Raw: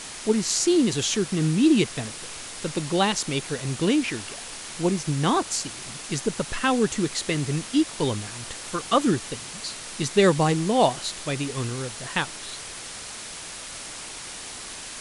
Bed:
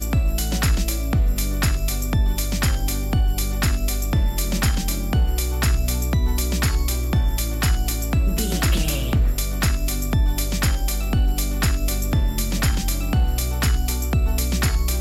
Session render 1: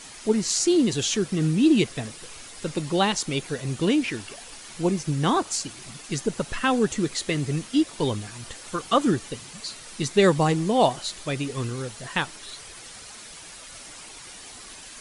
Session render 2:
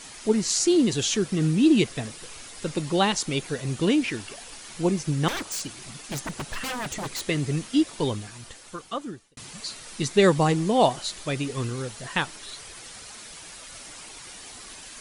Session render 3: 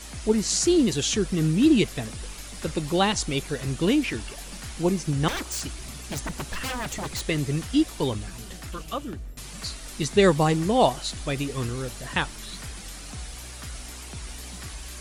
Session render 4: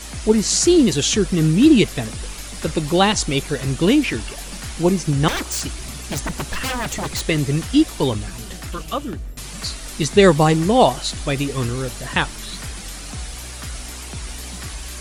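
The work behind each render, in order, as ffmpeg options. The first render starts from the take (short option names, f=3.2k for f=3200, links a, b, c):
-af "afftdn=nr=8:nf=-38"
-filter_complex "[0:a]asettb=1/sr,asplit=3[a][b][c];[a]atrim=end=5.284[d];[b]atrim=start=5.28:end=7.29,asetpts=PTS-STARTPTS,afade=t=in:d=0.004:c=qsin,afade=t=out:st=2.006:d=0.004:c=qsin,aeval=exprs='0.0531*(abs(mod(val(0)/0.0531+3,4)-2)-1)':c=same[e];[c]atrim=start=7.286[f];[d][e]acrossfade=d=0.004:c1=hsin:c2=qsin[g];[g][f]acrossfade=d=0.004:c1=qsin:c2=hsin,asplit=2[h][i];[h]atrim=end=9.37,asetpts=PTS-STARTPTS,afade=t=out:st=7.88:d=1.49[j];[i]atrim=start=9.37,asetpts=PTS-STARTPTS,afade=t=in:d=0.004:c=hsin[k];[j][k]concat=n=2:v=0:a=1"
-filter_complex "[1:a]volume=-19.5dB[a];[0:a][a]amix=inputs=2:normalize=0"
-af "volume=6.5dB,alimiter=limit=-2dB:level=0:latency=1"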